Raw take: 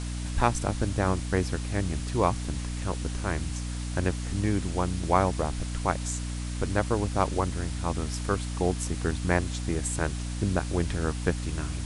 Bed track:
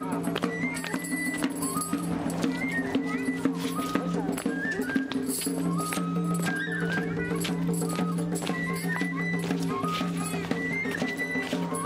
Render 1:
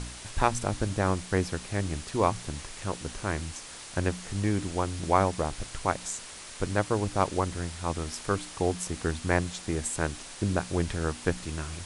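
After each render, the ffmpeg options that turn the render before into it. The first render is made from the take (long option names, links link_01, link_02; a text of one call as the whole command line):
ffmpeg -i in.wav -af "bandreject=frequency=60:width_type=h:width=4,bandreject=frequency=120:width_type=h:width=4,bandreject=frequency=180:width_type=h:width=4,bandreject=frequency=240:width_type=h:width=4,bandreject=frequency=300:width_type=h:width=4" out.wav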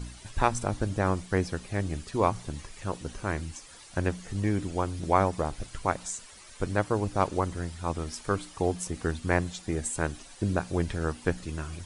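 ffmpeg -i in.wav -af "afftdn=noise_reduction=11:noise_floor=-44" out.wav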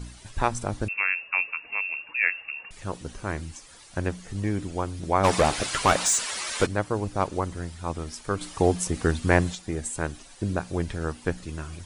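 ffmpeg -i in.wav -filter_complex "[0:a]asettb=1/sr,asplit=3[link_01][link_02][link_03];[link_01]atrim=end=0.884[link_04];[link_02]atrim=start=0.88:end=2.71,asetpts=PTS-STARTPTS,afade=type=in:duration=0.004:curve=qsin,afade=type=out:start_time=1.826:duration=0.004:curve=qsin,lowpass=frequency=2400:width_type=q:width=0.5098,lowpass=frequency=2400:width_type=q:width=0.6013,lowpass=frequency=2400:width_type=q:width=0.9,lowpass=frequency=2400:width_type=q:width=2.563,afreqshift=-2800[link_05];[link_03]atrim=start=2.706[link_06];[link_04][link_05]acrossfade=duration=0.004:curve1=hsin:curve2=qsin[link_07];[link_07][link_06]acrossfade=duration=0.004:curve1=qsin:curve2=hsin,asplit=3[link_08][link_09][link_10];[link_08]afade=type=out:start_time=5.23:duration=0.02[link_11];[link_09]asplit=2[link_12][link_13];[link_13]highpass=frequency=720:poles=1,volume=27dB,asoftclip=type=tanh:threshold=-9dB[link_14];[link_12][link_14]amix=inputs=2:normalize=0,lowpass=frequency=6200:poles=1,volume=-6dB,afade=type=in:start_time=5.23:duration=0.02,afade=type=out:start_time=6.65:duration=0.02[link_15];[link_10]afade=type=in:start_time=6.65:duration=0.02[link_16];[link_11][link_15][link_16]amix=inputs=3:normalize=0,asettb=1/sr,asplit=3[link_17][link_18][link_19];[link_17]atrim=end=8.414[link_20];[link_18]atrim=start=8.41:end=9.55,asetpts=PTS-STARTPTS,afade=type=in:duration=0.004:curve=qsin,afade=type=out:start_time=1.136:duration=0.004:curve=qsin,acontrast=62[link_21];[link_19]atrim=start=9.546[link_22];[link_20][link_21]acrossfade=duration=0.004:curve1=hsin:curve2=qsin[link_23];[link_23][link_22]acrossfade=duration=0.004:curve1=qsin:curve2=hsin" out.wav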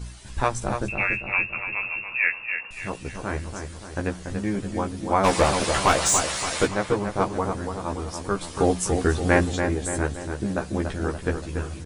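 ffmpeg -i in.wav -filter_complex "[0:a]asplit=2[link_01][link_02];[link_02]adelay=15,volume=-3.5dB[link_03];[link_01][link_03]amix=inputs=2:normalize=0,asplit=2[link_04][link_05];[link_05]adelay=286,lowpass=frequency=2500:poles=1,volume=-6dB,asplit=2[link_06][link_07];[link_07]adelay=286,lowpass=frequency=2500:poles=1,volume=0.54,asplit=2[link_08][link_09];[link_09]adelay=286,lowpass=frequency=2500:poles=1,volume=0.54,asplit=2[link_10][link_11];[link_11]adelay=286,lowpass=frequency=2500:poles=1,volume=0.54,asplit=2[link_12][link_13];[link_13]adelay=286,lowpass=frequency=2500:poles=1,volume=0.54,asplit=2[link_14][link_15];[link_15]adelay=286,lowpass=frequency=2500:poles=1,volume=0.54,asplit=2[link_16][link_17];[link_17]adelay=286,lowpass=frequency=2500:poles=1,volume=0.54[link_18];[link_04][link_06][link_08][link_10][link_12][link_14][link_16][link_18]amix=inputs=8:normalize=0" out.wav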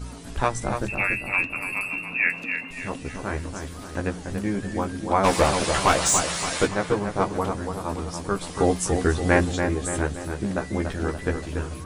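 ffmpeg -i in.wav -i bed.wav -filter_complex "[1:a]volume=-13dB[link_01];[0:a][link_01]amix=inputs=2:normalize=0" out.wav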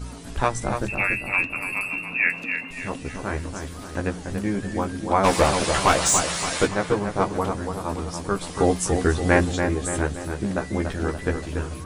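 ffmpeg -i in.wav -af "volume=1dB" out.wav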